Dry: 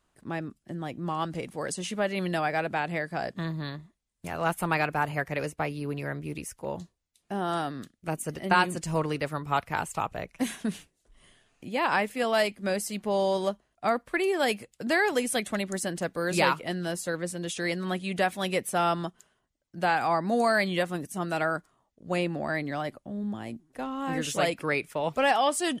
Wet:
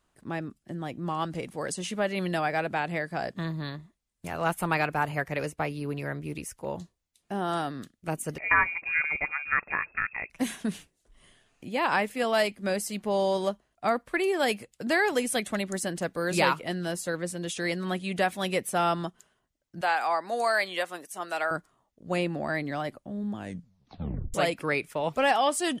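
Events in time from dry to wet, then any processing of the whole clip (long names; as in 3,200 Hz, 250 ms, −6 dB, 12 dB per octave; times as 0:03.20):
0:08.38–0:10.30: voice inversion scrambler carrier 2,600 Hz
0:19.81–0:21.51: high-pass filter 560 Hz
0:23.35: tape stop 0.99 s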